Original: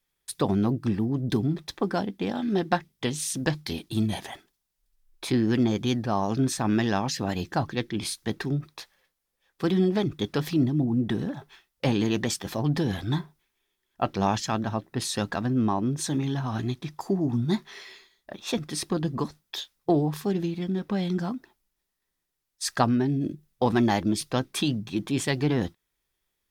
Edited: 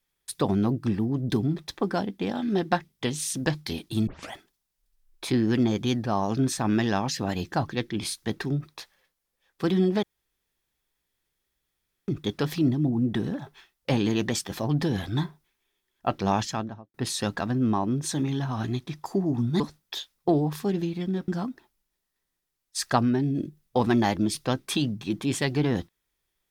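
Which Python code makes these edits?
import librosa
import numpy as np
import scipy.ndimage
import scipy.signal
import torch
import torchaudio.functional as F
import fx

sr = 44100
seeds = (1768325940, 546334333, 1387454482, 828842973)

y = fx.studio_fade_out(x, sr, start_s=14.36, length_s=0.53)
y = fx.edit(y, sr, fx.tape_start(start_s=4.07, length_s=0.25),
    fx.insert_room_tone(at_s=10.03, length_s=2.05),
    fx.cut(start_s=17.55, length_s=1.66),
    fx.cut(start_s=20.89, length_s=0.25), tone=tone)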